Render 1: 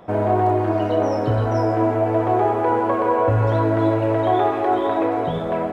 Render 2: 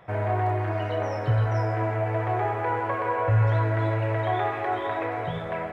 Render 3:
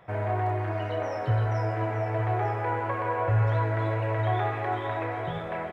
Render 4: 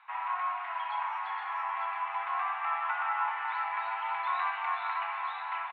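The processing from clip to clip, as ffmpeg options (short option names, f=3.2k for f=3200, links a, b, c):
-af "equalizer=f=125:t=o:w=1:g=10,equalizer=f=250:t=o:w=1:g=-11,equalizer=f=2k:t=o:w=1:g=11,volume=-8dB"
-af "aecho=1:1:904:0.266,volume=-2.5dB"
-af "aecho=1:1:555:0.335,highpass=f=430:t=q:w=0.5412,highpass=f=430:t=q:w=1.307,lowpass=f=3.6k:t=q:w=0.5176,lowpass=f=3.6k:t=q:w=0.7071,lowpass=f=3.6k:t=q:w=1.932,afreqshift=350,volume=-2.5dB"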